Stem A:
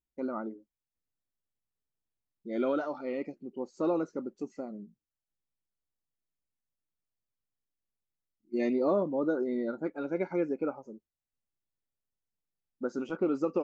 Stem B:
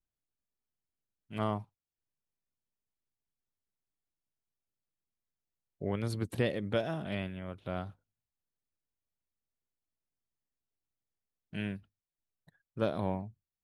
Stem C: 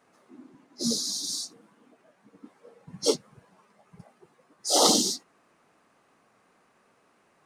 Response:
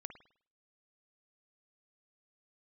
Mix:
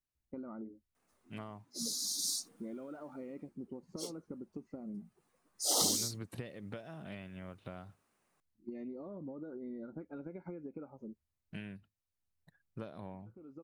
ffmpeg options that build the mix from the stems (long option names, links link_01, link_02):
-filter_complex "[0:a]alimiter=limit=-24dB:level=0:latency=1:release=277,equalizer=frequency=79:width_type=o:width=0.41:gain=13,acompressor=threshold=-36dB:ratio=2,adelay=150,volume=-5dB[link_01];[1:a]aemphasis=mode=production:type=riaa,bandreject=frequency=3300:width=14,volume=-1.5dB,asplit=2[link_02][link_03];[2:a]aemphasis=mode=production:type=bsi,adelay=950,volume=-1.5dB,afade=type=in:start_time=1.84:duration=0.4:silence=0.473151,afade=type=out:start_time=3.12:duration=0.43:silence=0.223872,afade=type=in:start_time=5.04:duration=0.22:silence=0.398107[link_04];[link_03]apad=whole_len=607800[link_05];[link_01][link_05]sidechaincompress=threshold=-58dB:ratio=16:attack=40:release=509[link_06];[link_06][link_02]amix=inputs=2:normalize=0,aemphasis=mode=reproduction:type=75fm,acompressor=threshold=-45dB:ratio=6,volume=0dB[link_07];[link_04][link_07]amix=inputs=2:normalize=0,bass=frequency=250:gain=11,treble=frequency=4000:gain=-1"